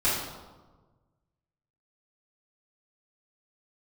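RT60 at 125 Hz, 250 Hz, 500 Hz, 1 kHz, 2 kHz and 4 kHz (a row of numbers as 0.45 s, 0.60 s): 2.0 s, 1.5 s, 1.4 s, 1.3 s, 0.85 s, 0.80 s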